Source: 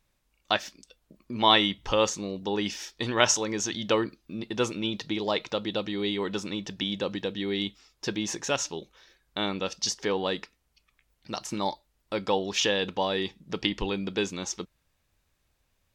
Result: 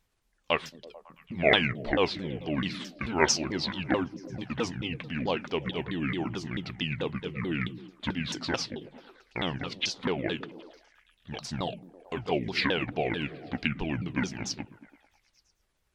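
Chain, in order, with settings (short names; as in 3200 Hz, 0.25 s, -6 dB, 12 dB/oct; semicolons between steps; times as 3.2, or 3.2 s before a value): repeated pitch sweeps -10.5 st, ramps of 0.219 s; delay with a stepping band-pass 0.11 s, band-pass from 150 Hz, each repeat 0.7 oct, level -9.5 dB; gain -1 dB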